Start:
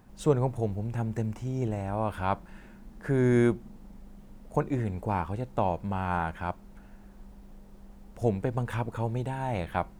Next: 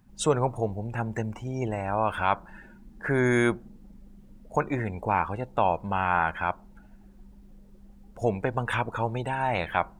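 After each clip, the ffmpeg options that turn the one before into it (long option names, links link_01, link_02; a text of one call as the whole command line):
ffmpeg -i in.wav -filter_complex "[0:a]afftdn=noise_reduction=18:noise_floor=-50,tiltshelf=frequency=690:gain=-7.5,asplit=2[link_01][link_02];[link_02]alimiter=limit=-20dB:level=0:latency=1,volume=-1dB[link_03];[link_01][link_03]amix=inputs=2:normalize=0" out.wav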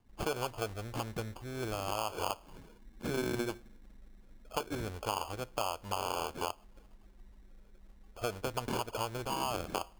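ffmpeg -i in.wav -af "equalizer=frequency=170:width_type=o:width=0.98:gain=-13.5,acrusher=samples=23:mix=1:aa=0.000001,acompressor=threshold=-27dB:ratio=6,volume=-3.5dB" out.wav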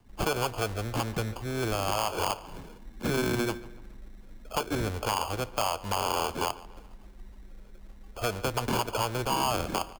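ffmpeg -i in.wav -filter_complex "[0:a]acrossover=split=290|580|6800[link_01][link_02][link_03][link_04];[link_02]alimiter=level_in=15.5dB:limit=-24dB:level=0:latency=1,volume=-15.5dB[link_05];[link_01][link_05][link_03][link_04]amix=inputs=4:normalize=0,aeval=exprs='0.112*sin(PI/2*1.78*val(0)/0.112)':channel_layout=same,asplit=2[link_06][link_07];[link_07]adelay=144,lowpass=frequency=4300:poles=1,volume=-18.5dB,asplit=2[link_08][link_09];[link_09]adelay=144,lowpass=frequency=4300:poles=1,volume=0.47,asplit=2[link_10][link_11];[link_11]adelay=144,lowpass=frequency=4300:poles=1,volume=0.47,asplit=2[link_12][link_13];[link_13]adelay=144,lowpass=frequency=4300:poles=1,volume=0.47[link_14];[link_06][link_08][link_10][link_12][link_14]amix=inputs=5:normalize=0" out.wav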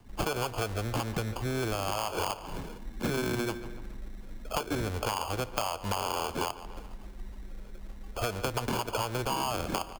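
ffmpeg -i in.wav -af "acompressor=threshold=-33dB:ratio=6,volume=5dB" out.wav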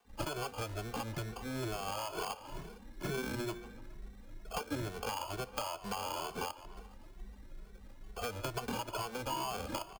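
ffmpeg -i in.wav -filter_complex "[0:a]acrossover=split=420|7200[link_01][link_02][link_03];[link_01]aeval=exprs='sgn(val(0))*max(abs(val(0))-0.00251,0)':channel_layout=same[link_04];[link_04][link_02][link_03]amix=inputs=3:normalize=0,asplit=2[link_05][link_06];[link_06]adelay=2.2,afreqshift=2.2[link_07];[link_05][link_07]amix=inputs=2:normalize=1,volume=-3.5dB" out.wav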